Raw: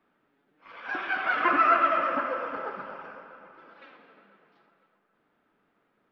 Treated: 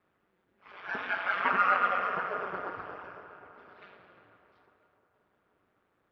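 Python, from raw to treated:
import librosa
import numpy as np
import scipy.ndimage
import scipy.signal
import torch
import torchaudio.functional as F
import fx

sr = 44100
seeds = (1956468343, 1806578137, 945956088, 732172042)

y = fx.low_shelf(x, sr, hz=450.0, db=-8.0, at=(1.15, 2.34))
y = y * np.sin(2.0 * np.pi * 93.0 * np.arange(len(y)) / sr)
y = fx.echo_filtered(y, sr, ms=178, feedback_pct=84, hz=3000.0, wet_db=-22)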